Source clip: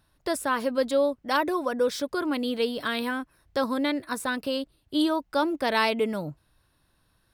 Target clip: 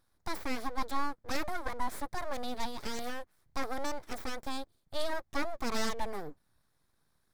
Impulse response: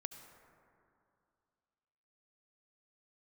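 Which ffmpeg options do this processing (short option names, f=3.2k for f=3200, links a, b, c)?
-af "aeval=exprs='abs(val(0))':c=same,equalizer=f=2.8k:t=o:w=0.35:g=-10,volume=-5.5dB"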